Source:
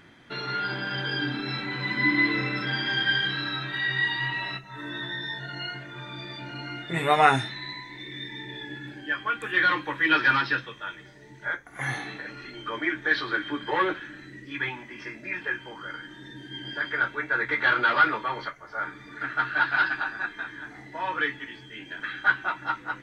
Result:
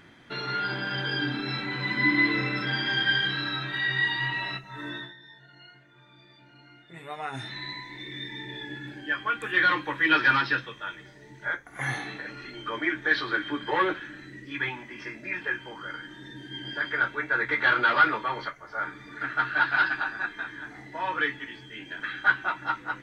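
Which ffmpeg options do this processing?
ffmpeg -i in.wav -filter_complex "[0:a]asplit=3[link_01][link_02][link_03];[link_01]atrim=end=5.14,asetpts=PTS-STARTPTS,afade=type=out:start_time=4.9:duration=0.24:silence=0.141254[link_04];[link_02]atrim=start=5.14:end=7.32,asetpts=PTS-STARTPTS,volume=-17dB[link_05];[link_03]atrim=start=7.32,asetpts=PTS-STARTPTS,afade=type=in:duration=0.24:silence=0.141254[link_06];[link_04][link_05][link_06]concat=n=3:v=0:a=1" out.wav

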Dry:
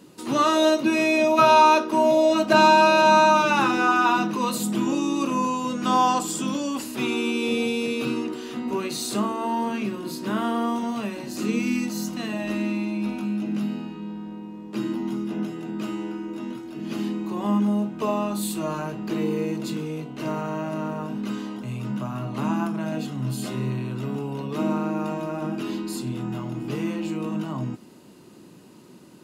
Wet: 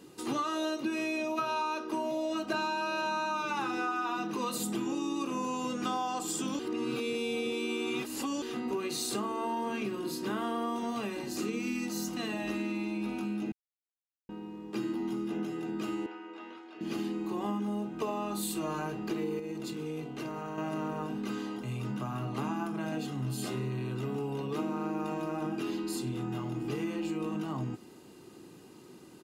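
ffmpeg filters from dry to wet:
ffmpeg -i in.wav -filter_complex "[0:a]asettb=1/sr,asplit=3[link_01][link_02][link_03];[link_01]atrim=end=16.064[link_04];[link_02]atrim=start=16.06:end=16.81,asetpts=PTS-STARTPTS,afade=type=in:duration=0.004:curve=qsin,afade=type=out:start_time=0.746:duration=0.004:curve=qsin,highpass=620,lowpass=3400[link_05];[link_03]atrim=start=16.806[link_06];[link_04][link_05]acrossfade=duration=0.004:curve1=hsin:curve2=qsin[link_07];[link_07][link_06]acrossfade=duration=0.004:curve1=qsin:curve2=hsin,asettb=1/sr,asplit=3[link_08][link_09][link_10];[link_08]atrim=end=19.394[link_11];[link_09]atrim=start=19.39:end=20.58,asetpts=PTS-STARTPTS,afade=type=in:duration=0.004:curve=qsin,afade=type=out:start_time=1.186:duration=0.004:curve=qsin,acompressor=threshold=-30dB:ratio=6:attack=3.2:release=140:knee=1:detection=peak[link_12];[link_10]atrim=start=20.576[link_13];[link_11][link_12]acrossfade=duration=0.004:curve1=hsin:curve2=qsin[link_14];[link_14][link_13]acrossfade=duration=0.004:curve1=qsin:curve2=hsin,asplit=5[link_15][link_16][link_17][link_18][link_19];[link_15]atrim=end=6.592[link_20];[link_16]atrim=start=6.588:end=8.422,asetpts=PTS-STARTPTS,areverse[link_21];[link_17]atrim=start=8.418:end=13.52,asetpts=PTS-STARTPTS,afade=type=out:start_time=5.098:duration=0.004:curve=hsin[link_22];[link_18]atrim=start=13.52:end=14.29,asetpts=PTS-STARTPTS,volume=0[link_23];[link_19]atrim=start=14.29,asetpts=PTS-STARTPTS,afade=type=in:duration=0.004:curve=hsin[link_24];[link_20][link_21]acrossfade=duration=0.004:curve1=hsin:curve2=hsin[link_25];[link_22][link_23][link_24]concat=n=3:v=0:a=1[link_26];[link_25][link_26]acrossfade=duration=0.004:curve1=hsin:curve2=hsin,aecho=1:1:2.5:0.37,acompressor=threshold=-26dB:ratio=10,volume=-3.5dB" out.wav

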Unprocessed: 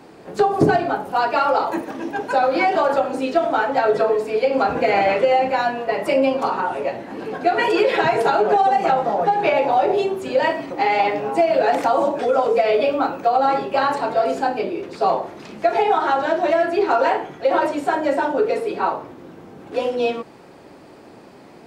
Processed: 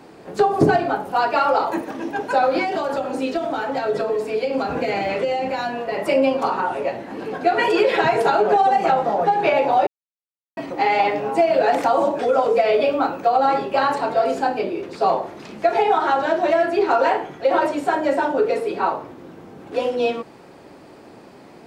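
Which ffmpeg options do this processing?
ffmpeg -i in.wav -filter_complex "[0:a]asettb=1/sr,asplit=3[link_01][link_02][link_03];[link_01]atrim=end=2.584[link_04];[link_02]atrim=start=2.58:end=5.97,asetpts=PTS-STARTPTS,afade=type=in:duration=0.004:curve=qsin,afade=type=out:start_time=3.386:duration=0.004:curve=qsin,acrossover=split=360|3000[link_05][link_06][link_07];[link_06]acompressor=threshold=-22dB:ratio=6:attack=3.2:release=140:knee=2.83:detection=peak[link_08];[link_05][link_08][link_07]amix=inputs=3:normalize=0[link_09];[link_03]atrim=start=5.966[link_10];[link_04][link_09]acrossfade=duration=0.004:curve1=hsin:curve2=qsin[link_11];[link_11][link_10]acrossfade=duration=0.004:curve1=qsin:curve2=hsin,asplit=3[link_12][link_13][link_14];[link_12]atrim=end=9.87,asetpts=PTS-STARTPTS,afade=type=out:start_time=9.866:duration=0.004:curve=hsin[link_15];[link_13]atrim=start=9.87:end=10.57,asetpts=PTS-STARTPTS,volume=0[link_16];[link_14]atrim=start=10.57,asetpts=PTS-STARTPTS,afade=type=in:duration=0.004:curve=hsin[link_17];[link_15][link_16][link_17]concat=n=3:v=0:a=1" out.wav

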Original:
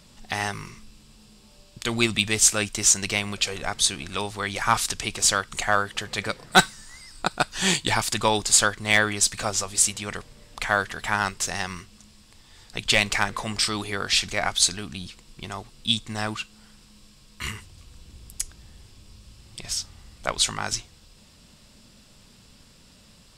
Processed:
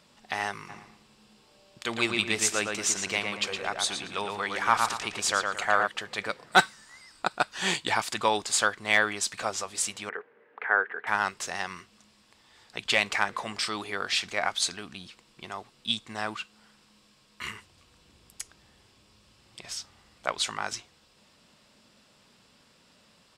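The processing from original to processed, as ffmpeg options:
ffmpeg -i in.wav -filter_complex "[0:a]asplit=3[link_01][link_02][link_03];[link_01]afade=type=out:start_time=0.68:duration=0.02[link_04];[link_02]asplit=2[link_05][link_06];[link_06]adelay=114,lowpass=frequency=3600:poles=1,volume=-3.5dB,asplit=2[link_07][link_08];[link_08]adelay=114,lowpass=frequency=3600:poles=1,volume=0.36,asplit=2[link_09][link_10];[link_10]adelay=114,lowpass=frequency=3600:poles=1,volume=0.36,asplit=2[link_11][link_12];[link_12]adelay=114,lowpass=frequency=3600:poles=1,volume=0.36,asplit=2[link_13][link_14];[link_14]adelay=114,lowpass=frequency=3600:poles=1,volume=0.36[link_15];[link_05][link_07][link_09][link_11][link_13][link_15]amix=inputs=6:normalize=0,afade=type=in:start_time=0.68:duration=0.02,afade=type=out:start_time=5.86:duration=0.02[link_16];[link_03]afade=type=in:start_time=5.86:duration=0.02[link_17];[link_04][link_16][link_17]amix=inputs=3:normalize=0,asettb=1/sr,asplit=3[link_18][link_19][link_20];[link_18]atrim=end=10.094[link_21];[link_19]atrim=start=10.09:end=11.07,asetpts=PTS-STARTPTS,afade=type=in:duration=0.004:curve=qsin,afade=type=out:start_time=0.976:duration=0.004:curve=qsin,highpass=360,equalizer=frequency=430:width_type=q:width=4:gain=10,equalizer=frequency=620:width_type=q:width=4:gain=-8,equalizer=frequency=1100:width_type=q:width=4:gain=-5,equalizer=frequency=1600:width_type=q:width=4:gain=5,lowpass=frequency=2000:width=0.5412,lowpass=frequency=2000:width=1.3066[link_22];[link_20]atrim=start=11.066[link_23];[link_21][link_22]acrossfade=duration=0.004:curve1=hsin:curve2=qsin[link_24];[link_24][link_23]acrossfade=duration=0.004:curve1=qsin:curve2=hsin,highpass=frequency=520:poles=1,highshelf=frequency=3700:gain=-11.5" out.wav

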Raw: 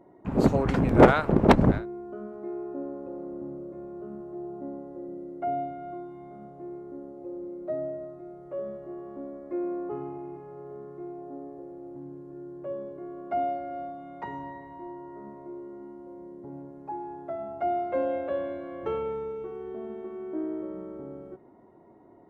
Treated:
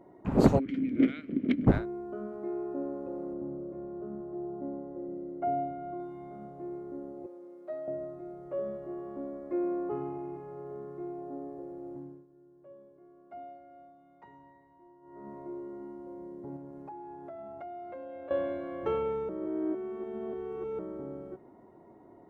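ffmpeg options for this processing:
ffmpeg -i in.wav -filter_complex "[0:a]asplit=3[link_01][link_02][link_03];[link_01]afade=type=out:start_time=0.58:duration=0.02[link_04];[link_02]asplit=3[link_05][link_06][link_07];[link_05]bandpass=frequency=270:width_type=q:width=8,volume=0dB[link_08];[link_06]bandpass=frequency=2290:width_type=q:width=8,volume=-6dB[link_09];[link_07]bandpass=frequency=3010:width_type=q:width=8,volume=-9dB[link_10];[link_08][link_09][link_10]amix=inputs=3:normalize=0,afade=type=in:start_time=0.58:duration=0.02,afade=type=out:start_time=1.66:duration=0.02[link_11];[link_03]afade=type=in:start_time=1.66:duration=0.02[link_12];[link_04][link_11][link_12]amix=inputs=3:normalize=0,asettb=1/sr,asplit=3[link_13][link_14][link_15];[link_13]atrim=end=3.334[link_16];[link_14]atrim=start=3.33:end=6,asetpts=PTS-STARTPTS,afade=type=in:duration=0.004:curve=qsin,afade=type=out:start_time=2.666:duration=0.004:curve=qsin,highshelf=frequency=2100:gain=-10[link_17];[link_15]atrim=start=5.996[link_18];[link_16][link_17]acrossfade=duration=0.004:curve1=hsin:curve2=qsin[link_19];[link_19][link_18]acrossfade=duration=0.004:curve1=qsin:curve2=hsin,asettb=1/sr,asplit=3[link_20][link_21][link_22];[link_20]atrim=end=7.264[link_23];[link_21]atrim=start=7.26:end=7.88,asetpts=PTS-STARTPTS,afade=type=in:duration=0.004:curve=qsin,afade=type=out:start_time=0.616:duration=0.004:curve=qsin,highpass=frequency=1200:poles=1[link_24];[link_22]atrim=start=7.876[link_25];[link_23][link_24]acrossfade=duration=0.004:curve1=hsin:curve2=qsin[link_26];[link_26][link_25]acrossfade=duration=0.004:curve1=qsin:curve2=hsin,asettb=1/sr,asplit=3[link_27][link_28][link_29];[link_27]atrim=end=16.564[link_30];[link_28]atrim=start=16.56:end=18.31,asetpts=PTS-STARTPTS,afade=type=in:duration=0.004:curve=qsin,afade=type=out:start_time=1.746:duration=0.004:curve=qsin,acompressor=threshold=-41dB:ratio=6:attack=3.2:release=140:knee=1:detection=peak[link_31];[link_29]atrim=start=18.306[link_32];[link_30][link_31]acrossfade=duration=0.004:curve1=hsin:curve2=qsin[link_33];[link_33][link_32]acrossfade=duration=0.004:curve1=qsin:curve2=hsin,asplit=5[link_34][link_35][link_36][link_37][link_38];[link_34]atrim=end=12.27,asetpts=PTS-STARTPTS,afade=type=out:start_time=11.93:duration=0.34:silence=0.133352[link_39];[link_35]atrim=start=12.27:end=15.01,asetpts=PTS-STARTPTS,volume=-17.5dB[link_40];[link_36]atrim=start=15.01:end=19.292,asetpts=PTS-STARTPTS,afade=type=in:duration=0.34:silence=0.133352[link_41];[link_37]atrim=start=19.288:end=20.792,asetpts=PTS-STARTPTS,areverse[link_42];[link_38]atrim=start=20.788[link_43];[link_39][link_40][link_41]concat=n=3:v=0:a=1[link_44];[link_44][link_42]acrossfade=duration=0.004:curve1=hsin:curve2=hsin[link_45];[link_45][link_43]acrossfade=duration=0.004:curve1=hsin:curve2=hsin" out.wav

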